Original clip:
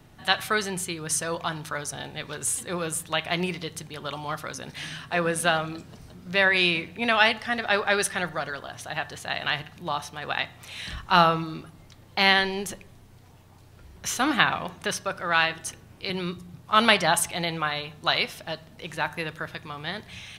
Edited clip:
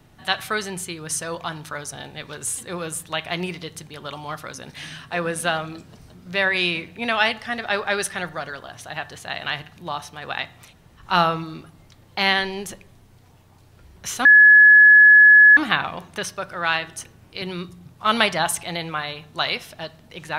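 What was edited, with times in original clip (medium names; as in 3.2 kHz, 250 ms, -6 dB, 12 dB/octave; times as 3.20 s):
10.69–11.01 s: room tone, crossfade 0.10 s
14.25 s: add tone 1.7 kHz -6.5 dBFS 1.32 s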